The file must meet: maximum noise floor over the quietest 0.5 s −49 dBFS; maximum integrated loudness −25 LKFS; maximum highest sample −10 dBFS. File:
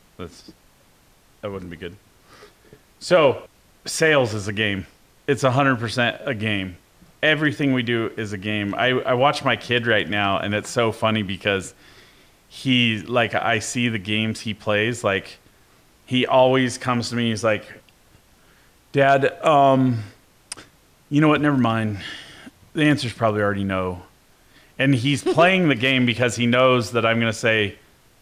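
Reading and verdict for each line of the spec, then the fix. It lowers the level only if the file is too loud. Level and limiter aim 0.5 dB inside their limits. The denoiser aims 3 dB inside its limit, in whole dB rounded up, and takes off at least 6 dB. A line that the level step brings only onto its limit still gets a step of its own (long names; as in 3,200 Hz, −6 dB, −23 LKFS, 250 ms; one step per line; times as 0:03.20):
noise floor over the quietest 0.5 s −56 dBFS: in spec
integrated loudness −20.0 LKFS: out of spec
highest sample −5.5 dBFS: out of spec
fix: level −5.5 dB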